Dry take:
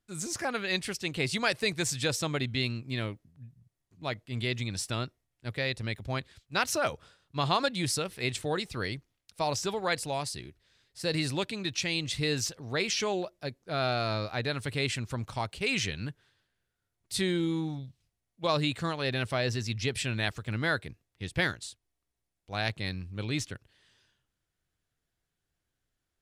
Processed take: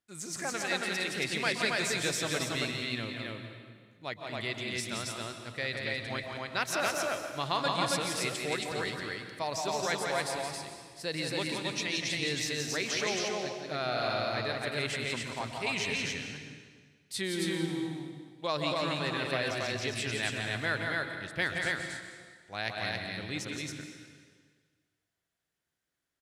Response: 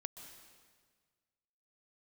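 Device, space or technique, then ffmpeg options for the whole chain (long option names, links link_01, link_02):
stadium PA: -filter_complex "[0:a]highpass=frequency=230:poles=1,equalizer=frequency=1900:width_type=o:width=0.37:gain=3.5,aecho=1:1:172|274.1:0.562|0.794[link_01];[1:a]atrim=start_sample=2205[link_02];[link_01][link_02]afir=irnorm=-1:irlink=0"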